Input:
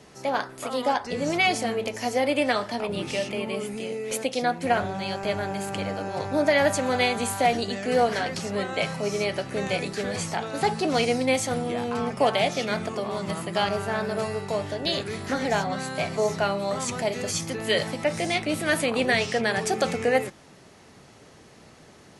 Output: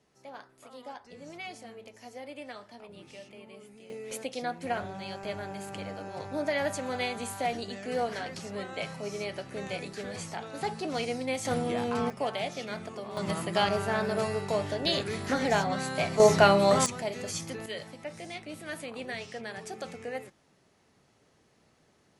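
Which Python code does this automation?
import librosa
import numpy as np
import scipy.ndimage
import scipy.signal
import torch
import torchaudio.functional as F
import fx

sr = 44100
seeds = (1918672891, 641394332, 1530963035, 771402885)

y = fx.gain(x, sr, db=fx.steps((0.0, -19.5), (3.9, -9.0), (11.45, -2.0), (12.1, -10.0), (13.17, -1.5), (16.2, 5.5), (16.86, -7.0), (17.66, -15.0)))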